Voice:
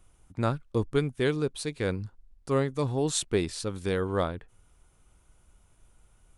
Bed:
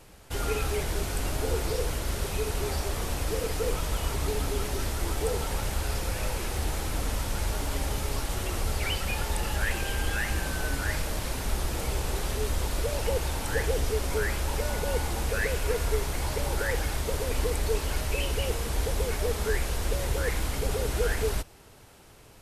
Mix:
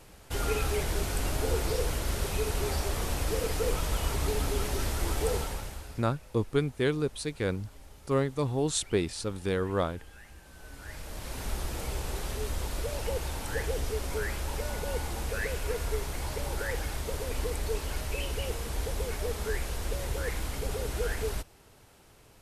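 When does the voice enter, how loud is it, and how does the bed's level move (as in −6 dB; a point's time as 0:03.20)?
5.60 s, −1.0 dB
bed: 0:05.36 −0.5 dB
0:06.17 −22.5 dB
0:10.42 −22.5 dB
0:11.42 −4.5 dB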